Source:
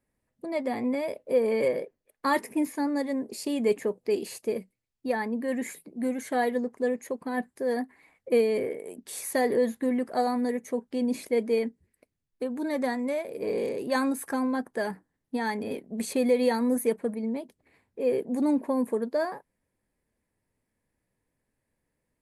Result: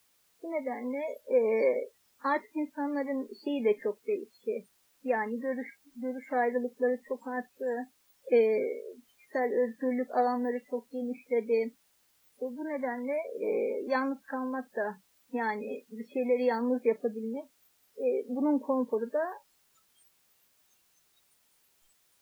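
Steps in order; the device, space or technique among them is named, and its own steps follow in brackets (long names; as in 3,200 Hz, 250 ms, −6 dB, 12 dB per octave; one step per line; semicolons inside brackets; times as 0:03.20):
shortwave radio (band-pass filter 280–3,000 Hz; amplitude tremolo 0.59 Hz, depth 37%; white noise bed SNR 9 dB)
noise reduction from a noise print of the clip's start 28 dB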